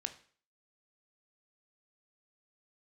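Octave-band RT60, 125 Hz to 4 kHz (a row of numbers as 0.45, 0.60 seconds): 0.45, 0.45, 0.45, 0.45, 0.45, 0.45 seconds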